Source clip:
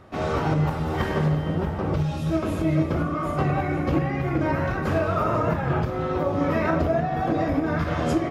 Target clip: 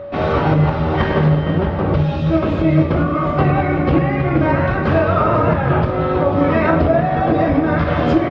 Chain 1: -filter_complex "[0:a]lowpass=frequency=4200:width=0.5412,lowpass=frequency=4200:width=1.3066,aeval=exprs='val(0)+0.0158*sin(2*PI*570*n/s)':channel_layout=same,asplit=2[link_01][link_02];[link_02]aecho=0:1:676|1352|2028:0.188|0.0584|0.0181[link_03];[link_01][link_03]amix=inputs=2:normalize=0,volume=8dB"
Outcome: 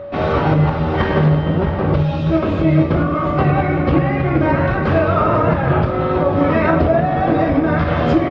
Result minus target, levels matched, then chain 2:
echo 187 ms late
-filter_complex "[0:a]lowpass=frequency=4200:width=0.5412,lowpass=frequency=4200:width=1.3066,aeval=exprs='val(0)+0.0158*sin(2*PI*570*n/s)':channel_layout=same,asplit=2[link_01][link_02];[link_02]aecho=0:1:489|978|1467:0.188|0.0584|0.0181[link_03];[link_01][link_03]amix=inputs=2:normalize=0,volume=8dB"

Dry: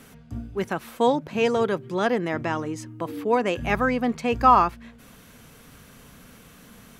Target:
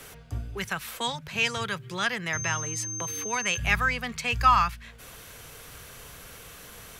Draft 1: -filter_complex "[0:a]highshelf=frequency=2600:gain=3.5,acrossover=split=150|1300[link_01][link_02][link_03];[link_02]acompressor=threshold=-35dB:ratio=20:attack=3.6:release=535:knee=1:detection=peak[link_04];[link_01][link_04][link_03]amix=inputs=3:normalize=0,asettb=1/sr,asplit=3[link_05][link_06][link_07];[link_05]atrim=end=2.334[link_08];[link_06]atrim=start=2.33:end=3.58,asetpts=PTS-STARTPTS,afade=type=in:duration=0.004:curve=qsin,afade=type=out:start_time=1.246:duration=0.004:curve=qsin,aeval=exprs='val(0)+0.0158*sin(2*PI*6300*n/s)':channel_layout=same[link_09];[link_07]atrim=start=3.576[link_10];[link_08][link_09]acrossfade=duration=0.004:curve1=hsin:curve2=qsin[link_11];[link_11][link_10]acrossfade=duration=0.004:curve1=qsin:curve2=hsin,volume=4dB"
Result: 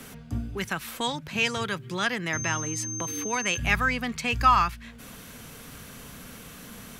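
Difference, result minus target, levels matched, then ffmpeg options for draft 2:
250 Hz band +5.5 dB
-filter_complex "[0:a]highshelf=frequency=2600:gain=3.5,acrossover=split=150|1300[link_01][link_02][link_03];[link_02]acompressor=threshold=-35dB:ratio=20:attack=3.6:release=535:knee=1:detection=peak,highpass=frequency=330:width=0.5412,highpass=frequency=330:width=1.3066[link_04];[link_01][link_04][link_03]amix=inputs=3:normalize=0,asettb=1/sr,asplit=3[link_05][link_06][link_07];[link_05]atrim=end=2.334[link_08];[link_06]atrim=start=2.33:end=3.58,asetpts=PTS-STARTPTS,afade=type=in:duration=0.004:curve=qsin,afade=type=out:start_time=1.246:duration=0.004:curve=qsin,aeval=exprs='val(0)+0.0158*sin(2*PI*6300*n/s)':channel_layout=same[link_09];[link_07]atrim=start=3.576[link_10];[link_08][link_09]acrossfade=duration=0.004:curve1=hsin:curve2=qsin[link_11];[link_11][link_10]acrossfade=duration=0.004:curve1=qsin:curve2=hsin,volume=4dB"

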